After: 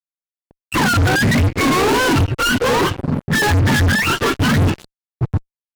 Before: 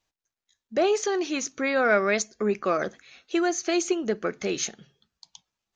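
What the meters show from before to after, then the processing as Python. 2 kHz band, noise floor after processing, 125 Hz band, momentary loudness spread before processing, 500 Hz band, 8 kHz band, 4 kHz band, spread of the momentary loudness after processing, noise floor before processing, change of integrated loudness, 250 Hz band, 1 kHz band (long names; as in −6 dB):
+12.5 dB, below −85 dBFS, +28.5 dB, 9 LU, +3.5 dB, +5.0 dB, +14.0 dB, 8 LU, below −85 dBFS, +9.5 dB, +10.5 dB, +11.5 dB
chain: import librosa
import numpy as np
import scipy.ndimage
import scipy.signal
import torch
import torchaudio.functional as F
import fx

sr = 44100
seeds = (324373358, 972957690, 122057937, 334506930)

y = fx.octave_mirror(x, sr, pivot_hz=770.0)
y = fx.dynamic_eq(y, sr, hz=260.0, q=1.4, threshold_db=-37.0, ratio=4.0, max_db=3)
y = fx.fuzz(y, sr, gain_db=46.0, gate_db=-48.0)
y = fx.low_shelf(y, sr, hz=470.0, db=4.0)
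y = F.gain(torch.from_numpy(y), -2.5).numpy()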